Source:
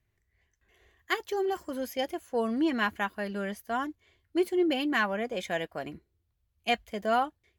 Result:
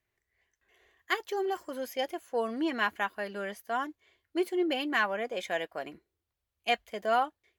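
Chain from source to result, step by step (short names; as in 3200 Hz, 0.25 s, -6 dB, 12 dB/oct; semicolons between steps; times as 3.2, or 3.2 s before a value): tone controls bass -13 dB, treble -2 dB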